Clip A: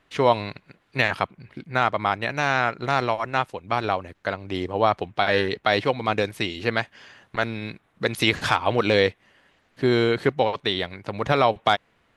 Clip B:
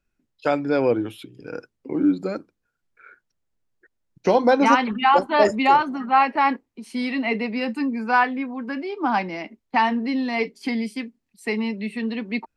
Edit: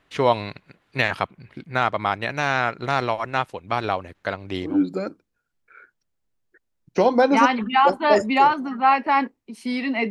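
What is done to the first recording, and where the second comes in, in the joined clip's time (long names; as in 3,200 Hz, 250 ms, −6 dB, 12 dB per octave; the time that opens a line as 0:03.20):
clip A
0:04.70: continue with clip B from 0:01.99, crossfade 0.24 s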